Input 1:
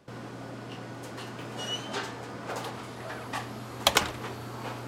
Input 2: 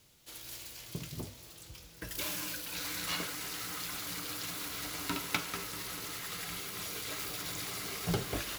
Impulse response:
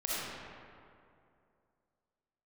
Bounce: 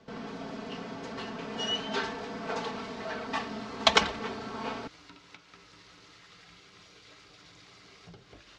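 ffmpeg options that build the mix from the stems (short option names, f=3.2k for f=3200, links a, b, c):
-filter_complex "[0:a]aecho=1:1:4.5:0.94,volume=-1dB[a];[1:a]acompressor=threshold=-45dB:ratio=4,volume=-5.5dB[b];[a][b]amix=inputs=2:normalize=0,lowpass=f=5.7k:w=0.5412,lowpass=f=5.7k:w=1.3066"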